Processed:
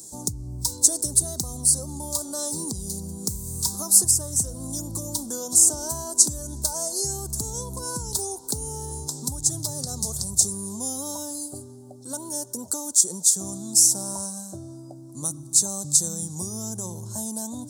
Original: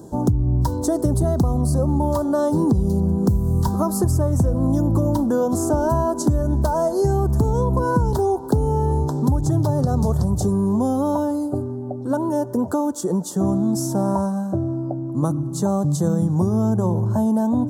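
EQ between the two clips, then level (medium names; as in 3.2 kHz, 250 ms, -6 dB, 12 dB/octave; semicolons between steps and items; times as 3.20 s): pre-emphasis filter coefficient 0.8; high-order bell 5.7 kHz +14.5 dB; treble shelf 8.2 kHz +10.5 dB; -2.0 dB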